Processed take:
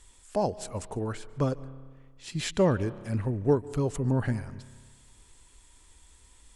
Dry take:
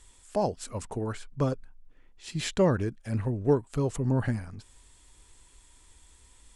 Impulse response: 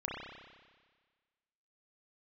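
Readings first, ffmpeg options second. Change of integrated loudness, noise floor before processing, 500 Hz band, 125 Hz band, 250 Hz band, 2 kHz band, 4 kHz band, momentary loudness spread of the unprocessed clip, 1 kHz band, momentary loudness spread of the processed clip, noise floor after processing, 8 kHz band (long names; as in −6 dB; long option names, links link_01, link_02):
0.0 dB, −59 dBFS, 0.0 dB, 0.0 dB, 0.0 dB, 0.0 dB, 0.0 dB, 13 LU, 0.0 dB, 13 LU, −58 dBFS, 0.0 dB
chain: -filter_complex "[0:a]asplit=2[link_01][link_02];[1:a]atrim=start_sample=2205,adelay=146[link_03];[link_02][link_03]afir=irnorm=-1:irlink=0,volume=-21.5dB[link_04];[link_01][link_04]amix=inputs=2:normalize=0"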